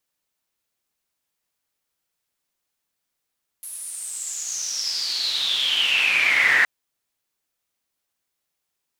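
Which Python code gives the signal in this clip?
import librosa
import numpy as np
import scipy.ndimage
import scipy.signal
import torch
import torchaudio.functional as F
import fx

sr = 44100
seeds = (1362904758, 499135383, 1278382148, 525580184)

y = fx.riser_noise(sr, seeds[0], length_s=3.02, colour='pink', kind='bandpass', start_hz=11000.0, end_hz=1800.0, q=9.9, swell_db=17.0, law='exponential')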